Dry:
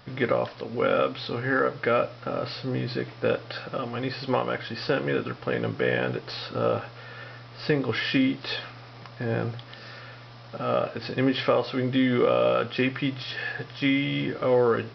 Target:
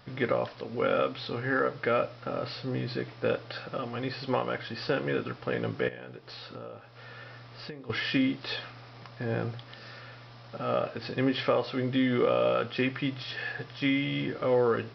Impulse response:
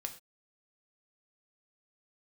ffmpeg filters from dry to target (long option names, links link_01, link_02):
-filter_complex "[0:a]asettb=1/sr,asplit=3[link_01][link_02][link_03];[link_01]atrim=end=5.884[link_04];[link_02]atrim=start=5.88:end=7.9,asetpts=PTS-STARTPTS,afade=type=in:duration=0.004:curve=qsin,afade=type=out:start_time=2.016:duration=0.004:curve=qsin,acompressor=threshold=-37dB:ratio=6[link_05];[link_03]atrim=start=7.896[link_06];[link_04][link_05]acrossfade=duration=0.004:curve1=hsin:curve2=qsin[link_07];[link_07][link_06]acrossfade=duration=0.004:curve1=qsin:curve2=hsin,volume=-3.5dB"